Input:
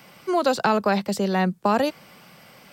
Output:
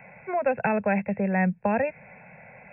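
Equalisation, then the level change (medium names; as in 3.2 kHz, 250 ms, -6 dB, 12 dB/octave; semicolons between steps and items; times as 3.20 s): brick-wall FIR low-pass 2.7 kHz; static phaser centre 1.2 kHz, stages 6; dynamic bell 850 Hz, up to -8 dB, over -37 dBFS, Q 0.83; +4.5 dB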